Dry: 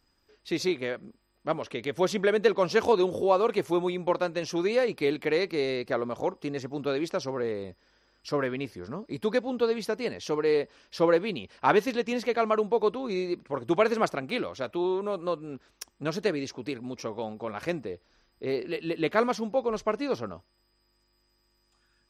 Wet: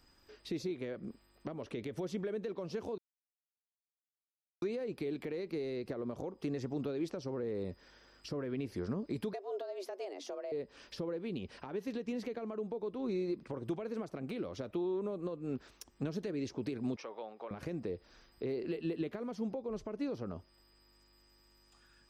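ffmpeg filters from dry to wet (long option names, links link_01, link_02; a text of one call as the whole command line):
ffmpeg -i in.wav -filter_complex "[0:a]asettb=1/sr,asplit=3[link_01][link_02][link_03];[link_01]atrim=end=9.334[link_04];[link_02]atrim=start=9.33:end=10.52,asetpts=PTS-STARTPTS,afade=type=in:duration=0.004:curve=qsin,afade=type=out:start_time=1.186:duration=0.004:curve=qsin,afreqshift=190[link_05];[link_03]atrim=start=10.516[link_06];[link_04][link_05]acrossfade=duration=0.004:curve1=hsin:curve2=qsin[link_07];[link_07][link_06]acrossfade=duration=0.004:curve1=qsin:curve2=hsin,asettb=1/sr,asplit=3[link_08][link_09][link_10];[link_08]atrim=end=16.964[link_11];[link_09]atrim=start=16.96:end=17.51,asetpts=PTS-STARTPTS,afade=type=in:duration=0.004:curve=qsin,afade=type=out:start_time=0.546:duration=0.004:curve=qsin,highpass=770,lowpass=3500[link_12];[link_10]atrim=start=17.506[link_13];[link_11][link_12]acrossfade=duration=0.004:curve1=hsin:curve2=qsin[link_14];[link_14][link_13]acrossfade=duration=0.004:curve1=qsin:curve2=hsin,asplit=3[link_15][link_16][link_17];[link_15]atrim=end=2.98,asetpts=PTS-STARTPTS,afade=type=out:start_time=2.976:duration=0.004:curve=hsin[link_18];[link_16]atrim=start=2.98:end=4.62,asetpts=PTS-STARTPTS,volume=0[link_19];[link_17]atrim=start=4.62,asetpts=PTS-STARTPTS,afade=type=in:duration=0.004:curve=hsin[link_20];[link_18][link_19][link_20]concat=n=3:v=0:a=1,acompressor=threshold=-34dB:ratio=6,alimiter=level_in=6dB:limit=-24dB:level=0:latency=1:release=38,volume=-6dB,acrossover=split=480[link_21][link_22];[link_22]acompressor=threshold=-52dB:ratio=10[link_23];[link_21][link_23]amix=inputs=2:normalize=0,volume=4dB" out.wav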